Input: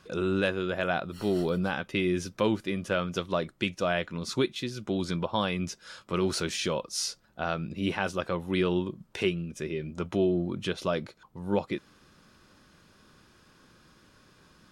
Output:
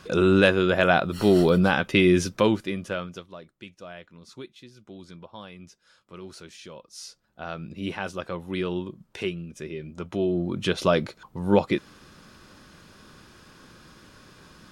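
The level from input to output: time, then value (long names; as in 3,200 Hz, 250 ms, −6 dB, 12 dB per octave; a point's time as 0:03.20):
0:02.20 +9 dB
0:03.05 −3.5 dB
0:03.33 −14 dB
0:06.68 −14 dB
0:07.69 −2 dB
0:10.08 −2 dB
0:10.82 +8 dB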